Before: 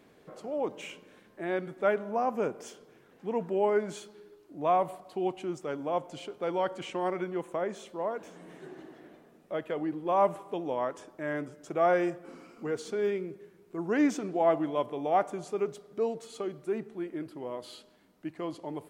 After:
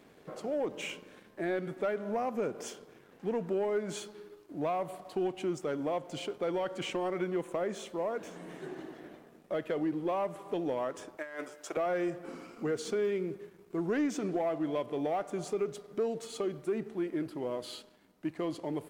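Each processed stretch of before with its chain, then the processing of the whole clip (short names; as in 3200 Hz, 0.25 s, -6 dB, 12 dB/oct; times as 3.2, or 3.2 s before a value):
11.17–11.77 HPF 630 Hz + negative-ratio compressor -41 dBFS, ratio -0.5
whole clip: compressor 4:1, threshold -31 dBFS; sample leveller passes 1; dynamic EQ 900 Hz, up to -5 dB, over -46 dBFS, Q 2.2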